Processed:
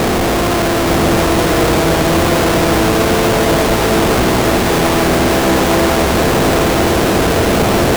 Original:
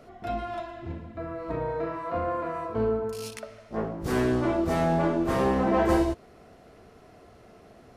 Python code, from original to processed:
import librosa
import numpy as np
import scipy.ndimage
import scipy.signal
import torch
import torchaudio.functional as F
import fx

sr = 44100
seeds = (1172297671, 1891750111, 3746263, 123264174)

p1 = fx.bin_compress(x, sr, power=0.2)
p2 = scipy.signal.sosfilt(scipy.signal.butter(2, 1500.0, 'lowpass', fs=sr, output='sos'), p1)
p3 = fx.schmitt(p2, sr, flips_db=-30.0)
p4 = p3 + fx.echo_single(p3, sr, ms=874, db=-3.5, dry=0)
y = p4 * librosa.db_to_amplitude(6.5)